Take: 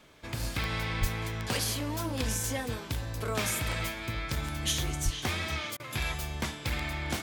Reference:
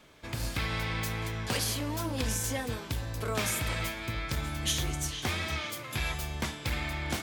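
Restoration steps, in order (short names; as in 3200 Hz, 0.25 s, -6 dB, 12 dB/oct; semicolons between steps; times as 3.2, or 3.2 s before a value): de-click; 1–1.12 HPF 140 Hz 24 dB/oct; 5.04–5.16 HPF 140 Hz 24 dB/oct; interpolate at 5.77, 27 ms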